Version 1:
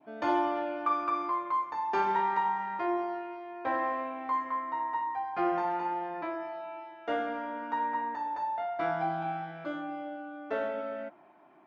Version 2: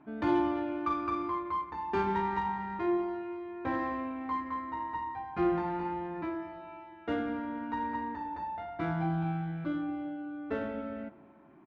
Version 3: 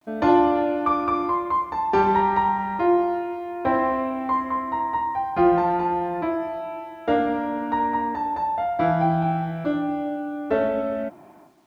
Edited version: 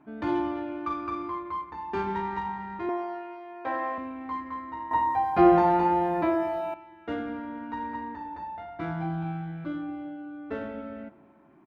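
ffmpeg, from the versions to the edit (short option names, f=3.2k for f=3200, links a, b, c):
-filter_complex "[1:a]asplit=3[a][b][c];[a]atrim=end=2.892[d];[0:a]atrim=start=2.888:end=3.982[e];[b]atrim=start=3.978:end=4.912[f];[2:a]atrim=start=4.908:end=6.742[g];[c]atrim=start=6.738[h];[d][e]acrossfade=d=0.004:c1=hsin:c2=hsin[i];[i][f]acrossfade=d=0.004:c1=hsin:c2=hsin[j];[j][g]acrossfade=d=0.004:c1=hsin:c2=hsin[k];[k][h]acrossfade=d=0.004:c1=hsin:c2=hsin"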